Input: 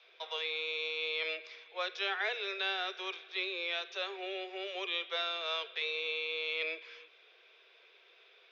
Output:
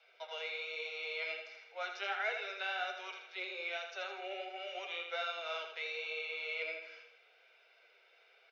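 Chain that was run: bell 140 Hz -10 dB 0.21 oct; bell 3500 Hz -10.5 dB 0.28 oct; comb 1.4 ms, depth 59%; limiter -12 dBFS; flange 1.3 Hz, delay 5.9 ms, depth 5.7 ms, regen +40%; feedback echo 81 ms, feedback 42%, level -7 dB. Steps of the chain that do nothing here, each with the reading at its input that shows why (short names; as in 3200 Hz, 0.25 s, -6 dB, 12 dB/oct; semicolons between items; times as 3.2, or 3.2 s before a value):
bell 140 Hz: input band starts at 300 Hz; limiter -12 dBFS: input peak -21.0 dBFS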